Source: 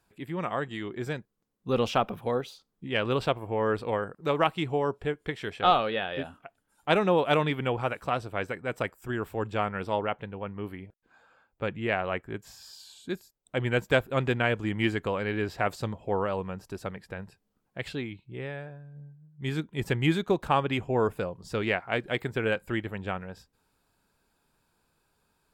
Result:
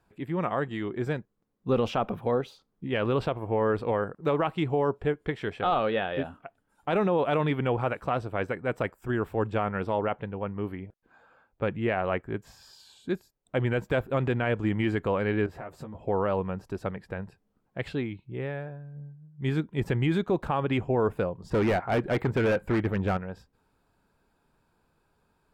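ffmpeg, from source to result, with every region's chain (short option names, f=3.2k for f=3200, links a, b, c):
-filter_complex "[0:a]asettb=1/sr,asplit=3[a][b][c];[a]atrim=end=15.464[d];[b]atrim=start=15.46:end=15.95,asetpts=PTS-STARTPTS,afade=t=in:d=0.004:c=qsin,afade=t=out:st=0.486:d=0.004:c=qsin,equalizer=f=4.2k:w=0.98:g=-9,acompressor=threshold=-44dB:ratio=3:attack=3.2:release=140:knee=1:detection=peak,asplit=2[e][f];[f]adelay=13,volume=-4dB[g];[e][g]amix=inputs=2:normalize=0,atrim=end_sample=21609[h];[c]atrim=start=15.946[i];[d][h]acrossfade=d=0.004:c1=hsin:c2=qsin[j];[j][i]acrossfade=d=0.004:c1=qsin:c2=hsin,asettb=1/sr,asplit=3[k][l][m];[k]atrim=end=21.504[n];[l]atrim=start=21.5:end=23.17,asetpts=PTS-STARTPTS,afade=t=in:d=0.004:c=qsin,afade=t=out:st=1.666:d=0.004:c=qsin,acontrast=56,asoftclip=type=hard:threshold=-24.5dB,adynamicequalizer=threshold=0.00562:dfrequency=3100:dqfactor=0.7:tfrequency=3100:tqfactor=0.7:attack=5:release=100:ratio=0.375:range=3:mode=cutabove:tftype=highshelf[o];[m]atrim=start=23.166[p];[n][o]acrossfade=d=0.004:c1=hsin:c2=qsin[q];[q][p]acrossfade=d=0.004:c1=qsin:c2=hsin,highshelf=f=2.7k:g=-12,alimiter=limit=-20.5dB:level=0:latency=1:release=43,volume=4dB"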